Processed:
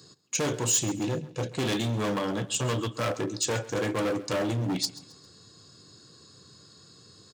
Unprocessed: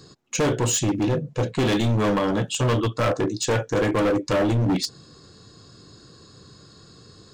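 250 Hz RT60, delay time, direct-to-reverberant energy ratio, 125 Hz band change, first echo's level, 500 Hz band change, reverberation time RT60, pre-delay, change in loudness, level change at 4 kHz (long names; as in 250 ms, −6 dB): no reverb audible, 134 ms, no reverb audible, −7.5 dB, −18.0 dB, −7.0 dB, no reverb audible, no reverb audible, −6.0 dB, −2.5 dB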